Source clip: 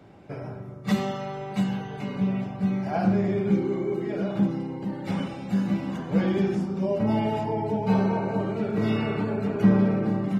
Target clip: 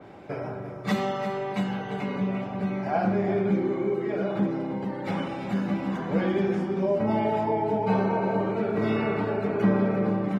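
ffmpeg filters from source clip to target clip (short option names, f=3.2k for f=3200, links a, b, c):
-filter_complex "[0:a]bass=f=250:g=-8,treble=f=4k:g=-5,bandreject=f=2.8k:w=20,asplit=2[a][b];[b]acompressor=threshold=-37dB:ratio=6,volume=2dB[c];[a][c]amix=inputs=2:normalize=0,aecho=1:1:343:0.282,adynamicequalizer=threshold=0.00447:dfrequency=3300:dqfactor=0.7:tfrequency=3300:tqfactor=0.7:attack=5:release=100:ratio=0.375:range=2:mode=cutabove:tftype=highshelf"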